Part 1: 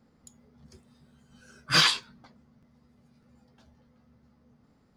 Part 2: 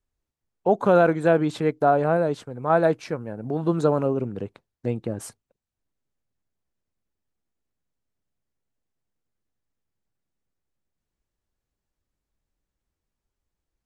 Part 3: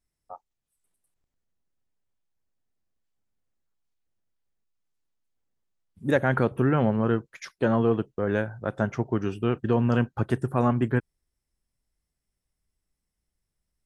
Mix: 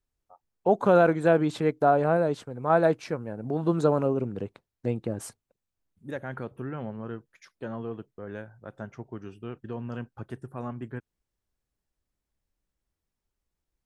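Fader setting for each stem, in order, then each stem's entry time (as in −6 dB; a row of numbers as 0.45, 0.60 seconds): muted, −2.0 dB, −13.0 dB; muted, 0.00 s, 0.00 s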